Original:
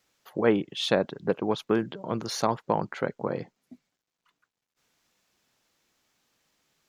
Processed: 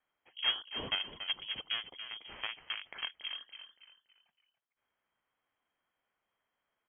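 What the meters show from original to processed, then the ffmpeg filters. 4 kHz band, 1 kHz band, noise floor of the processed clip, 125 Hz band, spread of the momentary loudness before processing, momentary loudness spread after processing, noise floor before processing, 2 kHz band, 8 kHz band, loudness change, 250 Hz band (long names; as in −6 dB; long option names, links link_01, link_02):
+2.5 dB, −17.0 dB, below −85 dBFS, −23.5 dB, 8 LU, 14 LU, below −85 dBFS, −4.0 dB, below −35 dB, −8.5 dB, −27.5 dB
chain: -filter_complex "[0:a]equalizer=frequency=860:width=2.2:gain=-7,aeval=exprs='0.335*(cos(1*acos(clip(val(0)/0.335,-1,1)))-cos(1*PI/2))+0.15*(cos(2*acos(clip(val(0)/0.335,-1,1)))-cos(2*PI/2))+0.075*(cos(6*acos(clip(val(0)/0.335,-1,1)))-cos(6*PI/2))':channel_layout=same,highpass=frequency=470:width_type=q:width=5.5,aderivative,asplit=5[link_01][link_02][link_03][link_04][link_05];[link_02]adelay=283,afreqshift=49,volume=-10dB[link_06];[link_03]adelay=566,afreqshift=98,volume=-19.1dB[link_07];[link_04]adelay=849,afreqshift=147,volume=-28.2dB[link_08];[link_05]adelay=1132,afreqshift=196,volume=-37.4dB[link_09];[link_01][link_06][link_07][link_08][link_09]amix=inputs=5:normalize=0,lowpass=frequency=3100:width_type=q:width=0.5098,lowpass=frequency=3100:width_type=q:width=0.6013,lowpass=frequency=3100:width_type=q:width=0.9,lowpass=frequency=3100:width_type=q:width=2.563,afreqshift=-3700,volume=2dB"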